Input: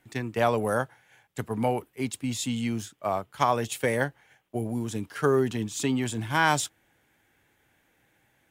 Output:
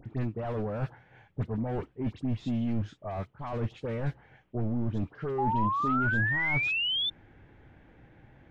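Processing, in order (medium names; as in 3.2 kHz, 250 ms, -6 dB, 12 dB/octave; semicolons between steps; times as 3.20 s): self-modulated delay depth 0.071 ms; reverse; compression 8:1, threshold -33 dBFS, peak gain reduction 16 dB; reverse; resampled via 22.05 kHz; in parallel at -4.5 dB: saturation -38.5 dBFS, distortion -8 dB; on the sum: distance through air 220 m; hard clipper -33 dBFS, distortion -11 dB; upward compressor, threshold -53 dBFS; tilt EQ -3 dB/octave; phase dispersion highs, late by 62 ms, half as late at 1.9 kHz; painted sound rise, 5.38–7.10 s, 800–3600 Hz -29 dBFS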